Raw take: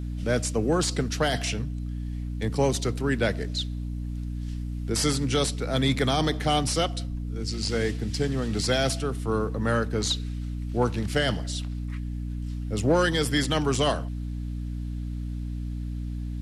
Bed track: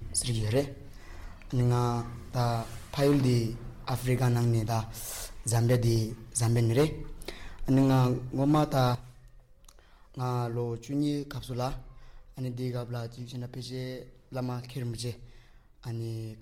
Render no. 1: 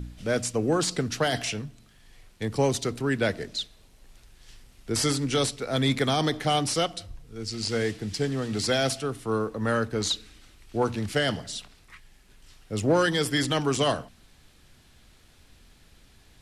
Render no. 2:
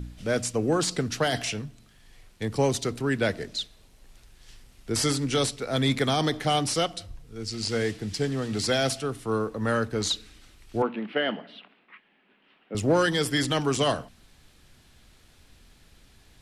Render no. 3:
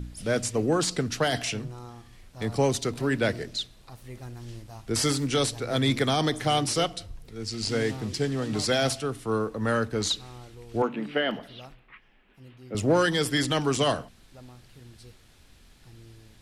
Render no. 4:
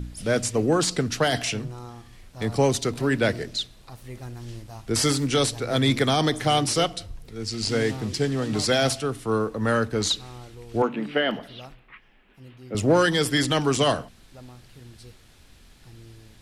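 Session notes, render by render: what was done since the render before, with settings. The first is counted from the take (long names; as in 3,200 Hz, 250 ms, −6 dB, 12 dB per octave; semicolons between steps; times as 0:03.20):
hum removal 60 Hz, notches 5
0:10.82–0:12.75: elliptic band-pass filter 210–2,900 Hz
mix in bed track −15 dB
level +3 dB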